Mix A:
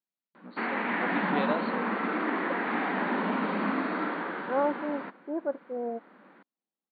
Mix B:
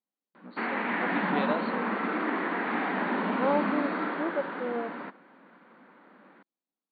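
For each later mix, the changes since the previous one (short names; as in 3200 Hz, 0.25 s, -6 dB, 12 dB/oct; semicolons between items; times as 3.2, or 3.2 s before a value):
second voice: entry -1.10 s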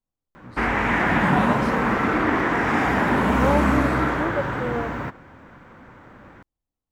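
second voice +4.0 dB; background +8.5 dB; master: remove brick-wall FIR band-pass 170–4600 Hz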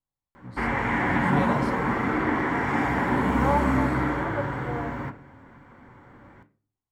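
second voice: add HPF 760 Hz; background -5.0 dB; reverb: on, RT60 0.40 s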